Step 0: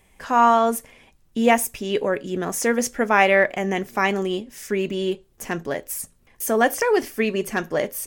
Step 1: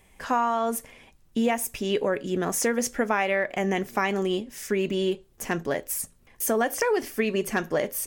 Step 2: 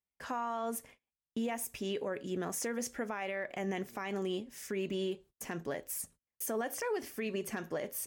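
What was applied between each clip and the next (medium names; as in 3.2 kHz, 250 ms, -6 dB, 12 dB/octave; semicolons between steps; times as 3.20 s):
compression 10:1, threshold -20 dBFS, peak gain reduction 10 dB
gate -45 dBFS, range -33 dB; high-pass 46 Hz; peak limiter -19 dBFS, peak gain reduction 8.5 dB; trim -8.5 dB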